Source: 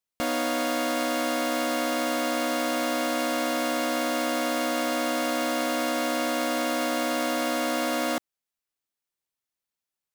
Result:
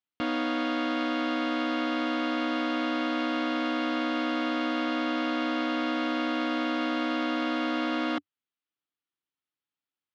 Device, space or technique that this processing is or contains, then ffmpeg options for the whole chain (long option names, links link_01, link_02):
guitar cabinet: -filter_complex "[0:a]highpass=90,equalizer=frequency=94:width_type=q:width=4:gain=4,equalizer=frequency=290:width_type=q:width=4:gain=8,equalizer=frequency=600:width_type=q:width=4:gain=-6,equalizer=frequency=1300:width_type=q:width=4:gain=4,equalizer=frequency=3100:width_type=q:width=4:gain=4,lowpass=frequency=4100:width=0.5412,lowpass=frequency=4100:width=1.3066,asettb=1/sr,asplit=3[link_01][link_02][link_03];[link_01]atrim=end=4.844[link_04];[link_02]atrim=start=4.84:end=5.92,asetpts=PTS-STARTPTS,afade=type=in:duration=0.004:curve=qsin,afade=type=out:start_time=1.076:duration=0.004:curve=qsin,lowpass=frequency=9200:width=0.5412,lowpass=frequency=9200:width=1.3066[link_05];[link_03]atrim=start=5.916[link_06];[link_04][link_05]acrossfade=duration=0.004:curve1=hsin:curve2=qsin[link_07];[link_07][link_06]acrossfade=duration=0.004:curve1=qsin:curve2=hsin,volume=-3.5dB"